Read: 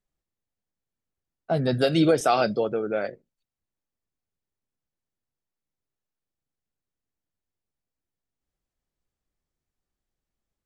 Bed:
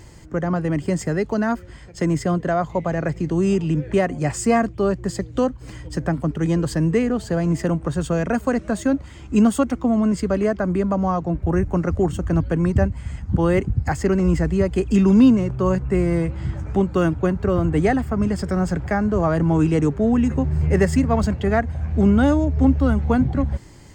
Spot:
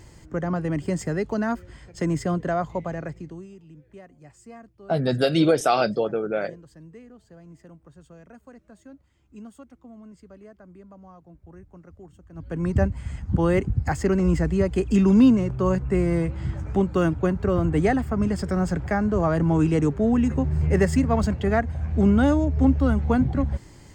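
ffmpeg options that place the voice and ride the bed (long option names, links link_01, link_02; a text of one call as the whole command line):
ffmpeg -i stem1.wav -i stem2.wav -filter_complex "[0:a]adelay=3400,volume=1dB[link_01];[1:a]volume=20dB,afade=type=out:start_time=2.59:duration=0.89:silence=0.0749894,afade=type=in:start_time=12.34:duration=0.47:silence=0.0630957[link_02];[link_01][link_02]amix=inputs=2:normalize=0" out.wav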